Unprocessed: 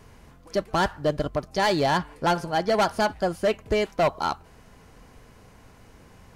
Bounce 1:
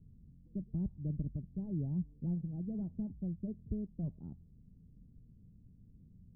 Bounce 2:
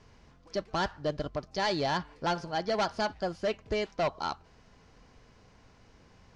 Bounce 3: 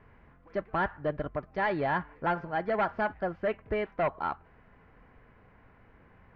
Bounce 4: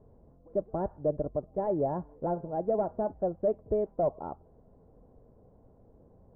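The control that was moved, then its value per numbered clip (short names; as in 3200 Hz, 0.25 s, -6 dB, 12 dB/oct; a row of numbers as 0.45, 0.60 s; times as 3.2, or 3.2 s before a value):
ladder low-pass, frequency: 230, 6600, 2400, 730 Hz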